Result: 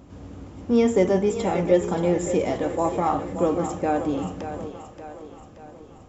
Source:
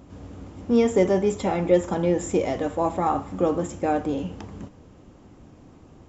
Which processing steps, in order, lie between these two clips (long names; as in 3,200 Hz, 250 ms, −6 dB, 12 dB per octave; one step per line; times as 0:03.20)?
echo with a time of its own for lows and highs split 330 Hz, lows 127 ms, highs 578 ms, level −10 dB